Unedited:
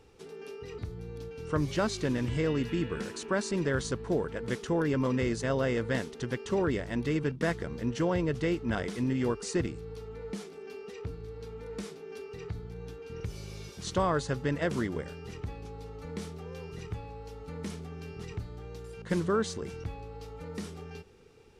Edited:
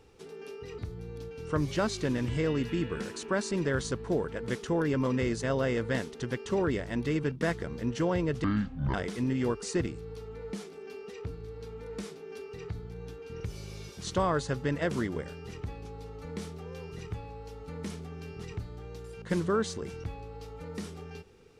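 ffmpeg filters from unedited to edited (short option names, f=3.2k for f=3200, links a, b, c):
-filter_complex "[0:a]asplit=3[a][b][c];[a]atrim=end=8.444[d];[b]atrim=start=8.44:end=8.74,asetpts=PTS-STARTPTS,asetrate=26460,aresample=44100[e];[c]atrim=start=8.736[f];[d][e]acrossfade=d=0.004:c1=hsin:c2=hsin[g];[g][f]acrossfade=d=0.004:c1=hsin:c2=hsin"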